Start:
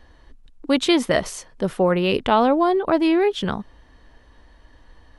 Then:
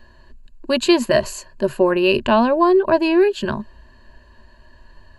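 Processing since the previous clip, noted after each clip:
EQ curve with evenly spaced ripples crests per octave 1.4, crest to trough 14 dB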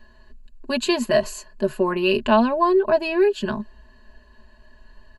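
comb filter 4.7 ms, depth 66%
level −5 dB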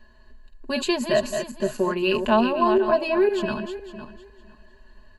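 feedback delay that plays each chunk backwards 253 ms, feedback 42%, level −7 dB
level −2.5 dB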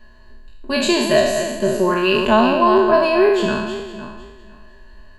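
peak hold with a decay on every bin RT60 1.01 s
level +4 dB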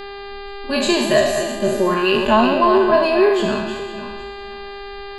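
spectral magnitudes quantised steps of 15 dB
hum with harmonics 400 Hz, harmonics 12, −33 dBFS −5 dB per octave

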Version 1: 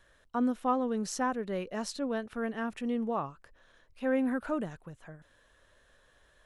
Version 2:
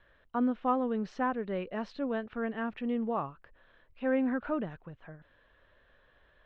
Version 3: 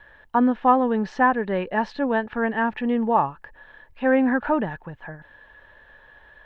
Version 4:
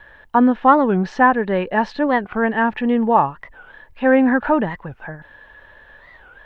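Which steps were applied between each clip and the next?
low-pass filter 3,300 Hz 24 dB per octave
hollow resonant body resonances 880/1,700 Hz, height 12 dB, ringing for 25 ms; level +9 dB
wow of a warped record 45 rpm, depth 250 cents; level +5 dB

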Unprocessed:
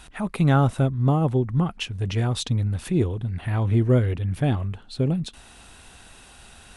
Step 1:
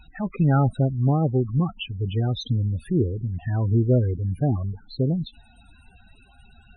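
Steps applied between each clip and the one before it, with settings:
hard clipping −11.5 dBFS, distortion −26 dB
spectral peaks only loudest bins 16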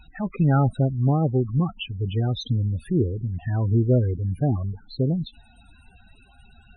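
no processing that can be heard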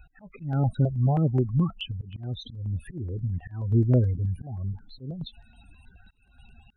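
volume swells 314 ms
step-sequenced phaser 9.4 Hz 960–4,000 Hz

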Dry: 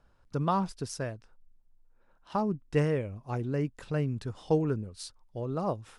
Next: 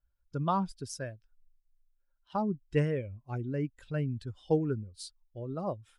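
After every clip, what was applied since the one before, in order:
spectral dynamics exaggerated over time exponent 1.5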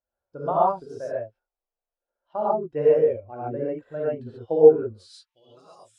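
band-pass filter sweep 610 Hz → 7,700 Hz, 0:04.73–0:05.64
reverb whose tail is shaped and stops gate 160 ms rising, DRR −8 dB
level +7 dB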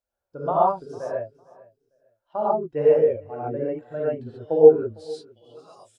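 repeating echo 453 ms, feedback 21%, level −22 dB
level +1 dB

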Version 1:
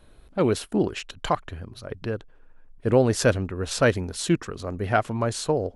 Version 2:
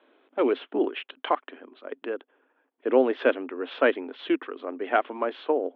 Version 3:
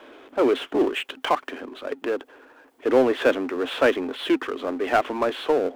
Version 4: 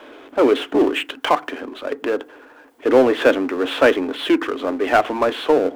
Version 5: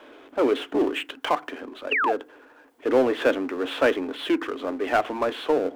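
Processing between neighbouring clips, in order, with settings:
Chebyshev band-pass filter 260–3,400 Hz, order 5
power curve on the samples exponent 0.7
feedback delay network reverb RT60 0.36 s, low-frequency decay 1.45×, high-frequency decay 0.4×, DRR 15.5 dB; level +5 dB
sound drawn into the spectrogram fall, 0:01.91–0:02.13, 610–3,000 Hz −16 dBFS; level −6.5 dB

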